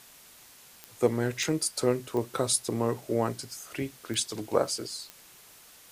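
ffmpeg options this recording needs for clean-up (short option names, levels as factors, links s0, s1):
-af "adeclick=t=4,afwtdn=0.0025"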